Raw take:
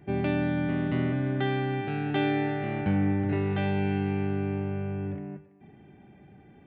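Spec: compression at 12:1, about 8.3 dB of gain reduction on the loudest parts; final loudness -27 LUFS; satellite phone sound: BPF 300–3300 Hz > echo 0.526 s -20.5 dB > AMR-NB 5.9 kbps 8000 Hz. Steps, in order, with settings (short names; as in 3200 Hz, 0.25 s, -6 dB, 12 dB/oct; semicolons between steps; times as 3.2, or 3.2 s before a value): compressor 12:1, threshold -30 dBFS; BPF 300–3300 Hz; echo 0.526 s -20.5 dB; gain +13.5 dB; AMR-NB 5.9 kbps 8000 Hz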